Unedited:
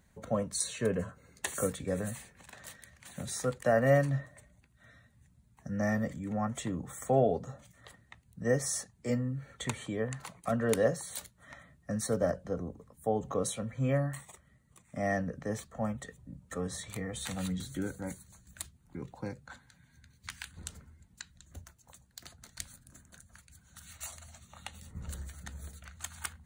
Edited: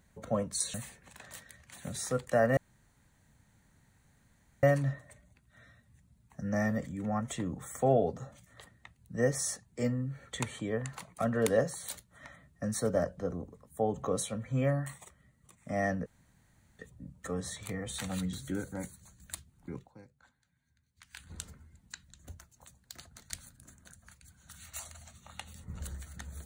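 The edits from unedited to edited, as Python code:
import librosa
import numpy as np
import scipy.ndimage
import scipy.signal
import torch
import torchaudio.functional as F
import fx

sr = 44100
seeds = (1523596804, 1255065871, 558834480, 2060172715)

y = fx.edit(x, sr, fx.cut(start_s=0.74, length_s=1.33),
    fx.insert_room_tone(at_s=3.9, length_s=2.06),
    fx.room_tone_fill(start_s=15.33, length_s=0.73),
    fx.fade_down_up(start_s=19.02, length_s=1.49, db=-15.0, fade_s=0.15), tone=tone)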